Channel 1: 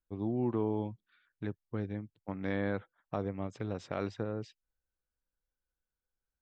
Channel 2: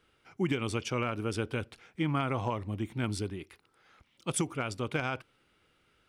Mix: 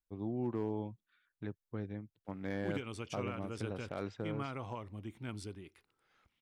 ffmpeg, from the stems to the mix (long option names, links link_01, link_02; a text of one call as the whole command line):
ffmpeg -i stem1.wav -i stem2.wav -filter_complex "[0:a]asoftclip=type=hard:threshold=-23dB,volume=-4.5dB[link_01];[1:a]adelay=2250,volume=-10.5dB[link_02];[link_01][link_02]amix=inputs=2:normalize=0" out.wav